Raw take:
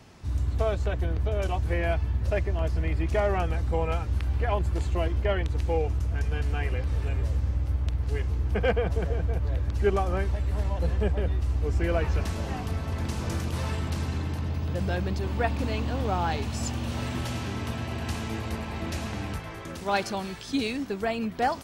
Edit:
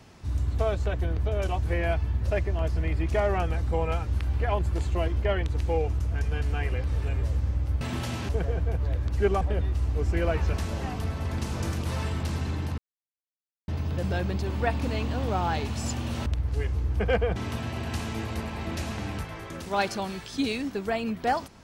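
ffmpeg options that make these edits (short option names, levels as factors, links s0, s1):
-filter_complex "[0:a]asplit=7[s0][s1][s2][s3][s4][s5][s6];[s0]atrim=end=7.812[s7];[s1]atrim=start=17.028:end=17.512[s8];[s2]atrim=start=8.908:end=10.032[s9];[s3]atrim=start=11.078:end=14.45,asetpts=PTS-STARTPTS,afade=t=out:st=3.368:d=0.004:c=hsin,apad=pad_dur=0.9[s10];[s4]atrim=start=14.45:end=17.032,asetpts=PTS-STARTPTS,afade=t=in:d=0.004:c=hsin[s11];[s5]atrim=start=7.808:end=8.912[s12];[s6]atrim=start=17.508[s13];[s7][s8]acrossfade=d=0.004:c1=hsin:c2=hsin[s14];[s14][s9]acrossfade=d=0.004:c1=hsin:c2=hsin[s15];[s10][s11]concat=n=2:v=0:a=1[s16];[s15][s16]acrossfade=d=0.004:c1=hsin:c2=hsin[s17];[s17][s12]acrossfade=d=0.004:c1=hsin:c2=hsin[s18];[s18][s13]acrossfade=d=0.004:c1=hsin:c2=hsin"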